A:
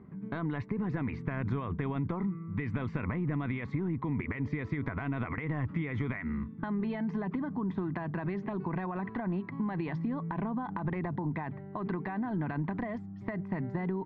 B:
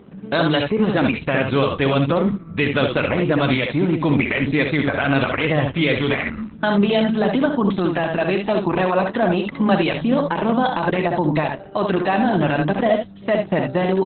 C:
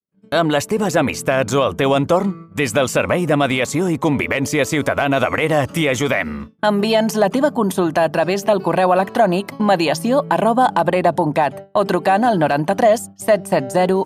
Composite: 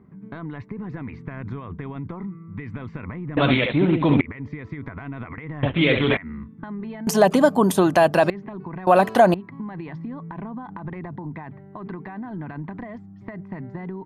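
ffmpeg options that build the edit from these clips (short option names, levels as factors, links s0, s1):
-filter_complex "[1:a]asplit=2[s0][s1];[2:a]asplit=2[s2][s3];[0:a]asplit=5[s4][s5][s6][s7][s8];[s4]atrim=end=3.372[s9];[s0]atrim=start=3.368:end=4.212[s10];[s5]atrim=start=4.208:end=5.632[s11];[s1]atrim=start=5.628:end=6.172[s12];[s6]atrim=start=6.168:end=7.072[s13];[s2]atrim=start=7.068:end=8.302[s14];[s7]atrim=start=8.298:end=8.872[s15];[s3]atrim=start=8.868:end=9.342[s16];[s8]atrim=start=9.338[s17];[s9][s10]acrossfade=d=0.004:c1=hsin:c2=hsin[s18];[s18][s11]acrossfade=d=0.004:c1=hsin:c2=hsin[s19];[s19][s12]acrossfade=d=0.004:c1=hsin:c2=hsin[s20];[s20][s13]acrossfade=d=0.004:c1=hsin:c2=hsin[s21];[s21][s14]acrossfade=d=0.004:c1=hsin:c2=hsin[s22];[s22][s15]acrossfade=d=0.004:c1=hsin:c2=hsin[s23];[s23][s16]acrossfade=d=0.004:c1=hsin:c2=hsin[s24];[s24][s17]acrossfade=d=0.004:c1=hsin:c2=hsin"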